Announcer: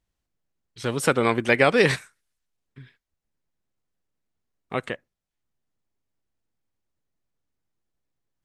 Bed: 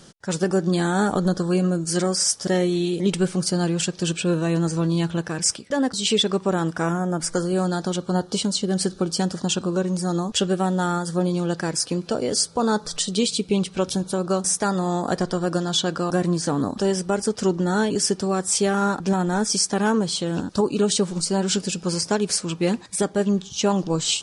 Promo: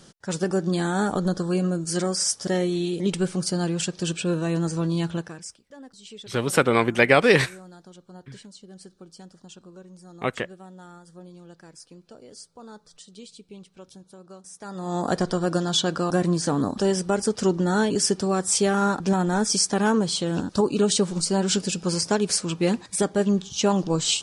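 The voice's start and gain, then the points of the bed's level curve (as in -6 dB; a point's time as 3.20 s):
5.50 s, +1.5 dB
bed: 5.16 s -3 dB
5.56 s -22.5 dB
14.51 s -22.5 dB
15.01 s -0.5 dB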